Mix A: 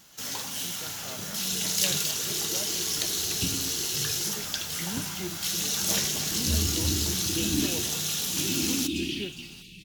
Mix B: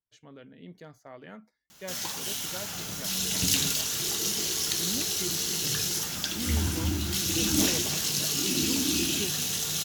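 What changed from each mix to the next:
first sound: entry +1.70 s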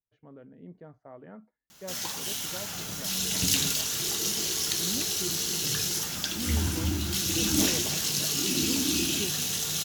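speech: add LPF 1100 Hz 12 dB/oct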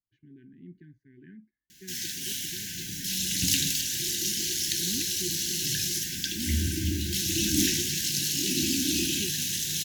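master: add brick-wall FIR band-stop 400–1500 Hz

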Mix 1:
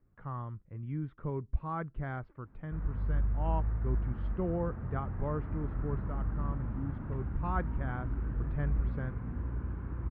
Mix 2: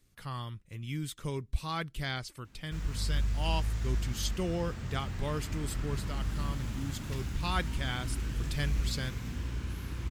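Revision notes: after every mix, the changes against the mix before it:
master: remove LPF 1400 Hz 24 dB/oct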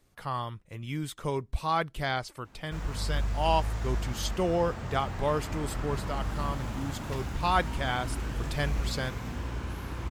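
master: add bell 750 Hz +12 dB 1.9 oct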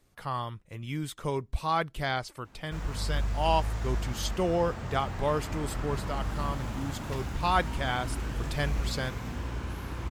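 none

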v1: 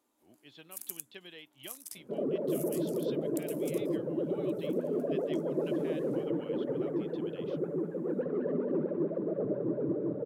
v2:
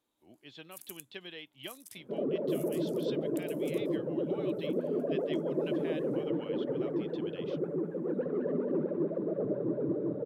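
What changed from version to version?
speech +4.0 dB; first sound -6.5 dB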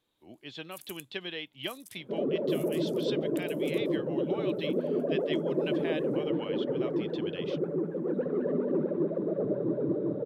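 speech +7.5 dB; second sound: send +10.5 dB

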